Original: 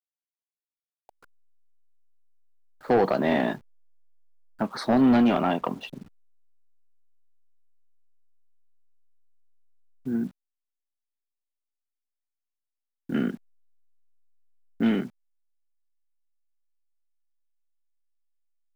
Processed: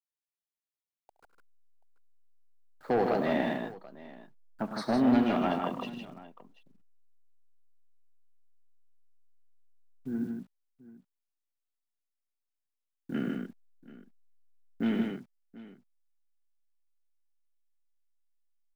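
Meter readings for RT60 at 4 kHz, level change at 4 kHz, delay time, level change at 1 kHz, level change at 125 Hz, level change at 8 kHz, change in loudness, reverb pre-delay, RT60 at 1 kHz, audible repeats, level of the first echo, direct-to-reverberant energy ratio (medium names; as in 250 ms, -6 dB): no reverb, -4.5 dB, 70 ms, -4.5 dB, -5.0 dB, no reading, -5.5 dB, no reverb, no reverb, 4, -16.0 dB, no reverb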